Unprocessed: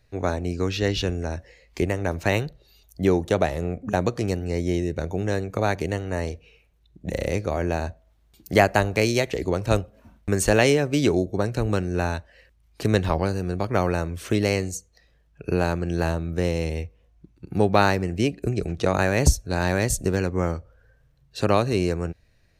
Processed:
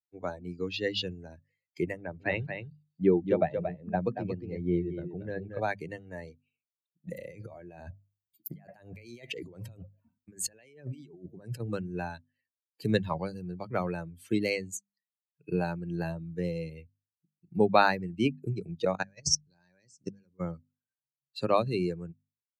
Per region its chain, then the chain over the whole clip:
1.97–5.6 air absorption 150 m + echo 0.23 s -4 dB
7.07–11.6 negative-ratio compressor -31 dBFS + notch 4200 Hz, Q 20
18.95–20.4 LPF 8400 Hz 24 dB/oct + bell 5500 Hz +14.5 dB 0.32 oct + level quantiser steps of 20 dB
whole clip: per-bin expansion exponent 2; HPF 120 Hz 24 dB/oct; notches 50/100/150/200/250 Hz

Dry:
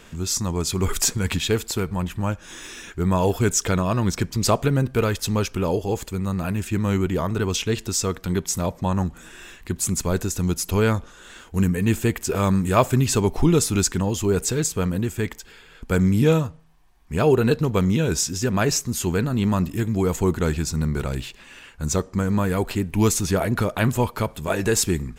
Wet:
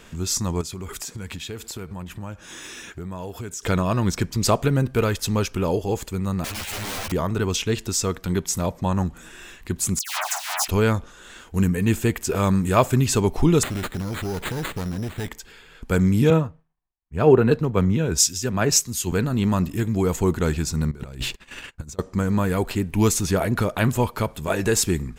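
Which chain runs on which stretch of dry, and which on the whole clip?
0.61–3.63 HPF 48 Hz + compressor 5:1, threshold -31 dBFS
6.44–7.12 EQ curve 100 Hz 0 dB, 170 Hz -23 dB, 280 Hz -5 dB, 780 Hz +11 dB, 1100 Hz -1 dB, 1600 Hz +10 dB, 2900 Hz +14 dB, 4800 Hz +7 dB, 8500 Hz -6 dB + wrapped overs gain 22.5 dB + ensemble effect
9.99–10.68 half-waves squared off + steep high-pass 680 Hz 72 dB/oct + dispersion lows, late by 0.116 s, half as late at 2100 Hz
13.63–15.29 minimum comb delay 0.56 ms + compressor 4:1, threshold -24 dBFS + careless resampling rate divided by 8×, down none, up hold
16.3–19.12 expander -51 dBFS + three-band expander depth 100%
20.91–21.99 gate -45 dBFS, range -27 dB + low shelf 180 Hz +3 dB + negative-ratio compressor -31 dBFS, ratio -0.5
whole clip: dry

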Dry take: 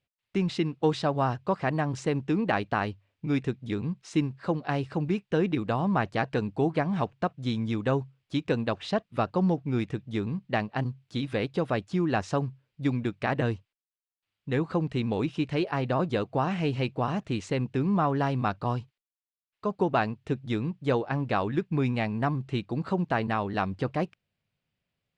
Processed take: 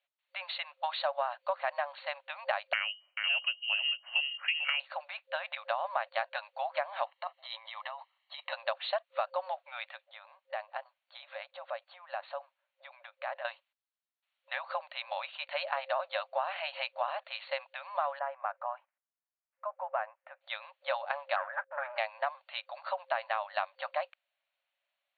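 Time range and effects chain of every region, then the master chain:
2.73–4.8 echo 0.44 s -11 dB + inverted band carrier 3000 Hz
7.05–8.53 comb 1 ms, depth 70% + negative-ratio compressor -28 dBFS, ratio -0.5
10.04–13.45 high shelf 2000 Hz -7.5 dB + notches 50/100/150/200/250/300/350/400/450/500 Hz + compressor, threshold -31 dBFS
18.19–20.41 LPF 1900 Hz 24 dB/oct + compressor 1.5:1, threshold -37 dBFS
21.36–21.98 low shelf 200 Hz +11 dB + sample leveller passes 3 + ladder low-pass 1700 Hz, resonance 75%
whole clip: FFT band-pass 530–4500 Hz; compressor, threshold -29 dBFS; gain +1.5 dB

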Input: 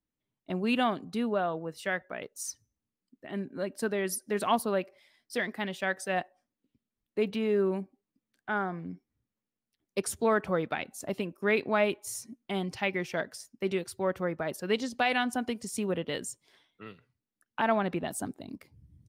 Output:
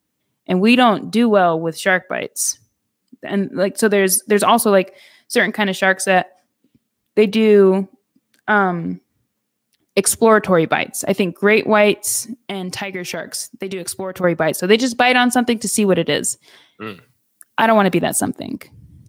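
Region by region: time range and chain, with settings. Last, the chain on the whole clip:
12.23–14.24 high shelf 9100 Hz +4.5 dB + compressor 10:1, threshold -37 dBFS
16.87–18.02 de-esser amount 75% + high shelf 6400 Hz +12 dB
whole clip: HPF 93 Hz; high shelf 6400 Hz +4 dB; maximiser +17 dB; gain -1 dB

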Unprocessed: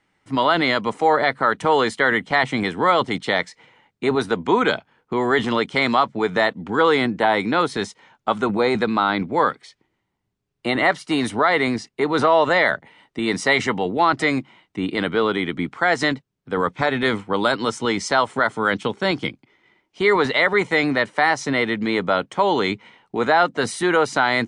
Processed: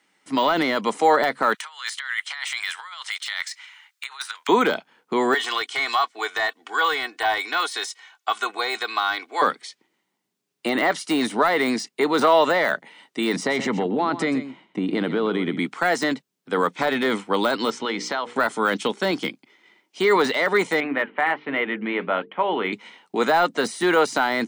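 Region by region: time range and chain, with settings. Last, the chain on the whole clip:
1.54–4.49 negative-ratio compressor -24 dBFS, ratio -0.5 + inverse Chebyshev high-pass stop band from 200 Hz, stop band 80 dB
5.34–9.42 HPF 980 Hz + comb 2.7 ms, depth 70%
13.36–15.59 tilt -3.5 dB/oct + compressor, threshold -18 dBFS + echo 0.126 s -13 dB
17.7–18.36 LPF 3400 Hz + notches 60/120/180/240/300/360/420/480 Hz + compressor, threshold -22 dBFS
20.8–22.73 steep low-pass 3000 Hz 48 dB/oct + notches 50/100/150/200/250/300/350/400/450 Hz + flange 1.3 Hz, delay 1 ms, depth 6.2 ms, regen -77%
whole clip: HPF 190 Hz 24 dB/oct; de-esser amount 85%; high shelf 3200 Hz +10.5 dB

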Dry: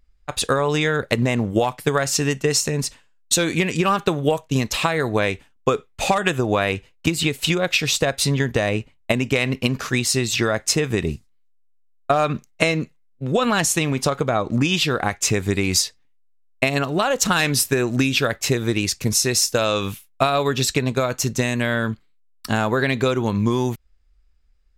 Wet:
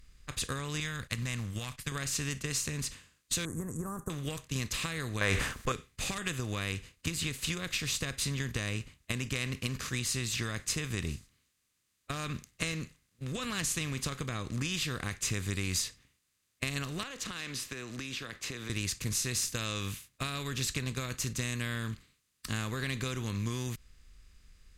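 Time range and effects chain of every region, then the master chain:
0.8–1.92 gate -39 dBFS, range -12 dB + bell 390 Hz -14 dB 1.2 oct
3.45–4.1 inverse Chebyshev band-stop 2300–5000 Hz, stop band 60 dB + bell 6100 Hz +8 dB 1.3 oct
5.21–5.72 band shelf 920 Hz +12 dB 2.4 oct + fast leveller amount 70%
17.03–18.7 three-band isolator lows -17 dB, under 230 Hz, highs -14 dB, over 5400 Hz + compressor 4:1, threshold -24 dBFS
whole clip: per-bin compression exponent 0.6; passive tone stack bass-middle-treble 6-0-2; notch 5400 Hz, Q 14

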